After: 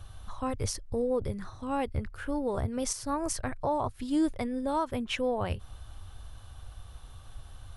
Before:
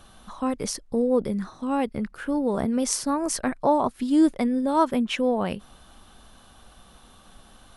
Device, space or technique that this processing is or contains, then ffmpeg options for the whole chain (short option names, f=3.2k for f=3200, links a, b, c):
car stereo with a boomy subwoofer: -af "lowshelf=f=140:t=q:w=3:g=11.5,alimiter=limit=-16dB:level=0:latency=1:release=211,volume=-4dB"